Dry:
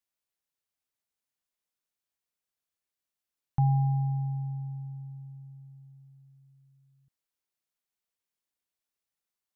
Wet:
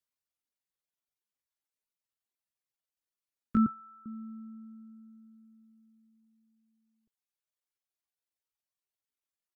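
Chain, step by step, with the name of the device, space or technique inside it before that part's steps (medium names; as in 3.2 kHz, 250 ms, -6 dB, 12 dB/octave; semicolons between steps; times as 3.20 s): chipmunk voice (pitch shift +8.5 st); reverb removal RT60 1.8 s; 3.66–4.06 s: Chebyshev band-stop 150–850 Hz, order 4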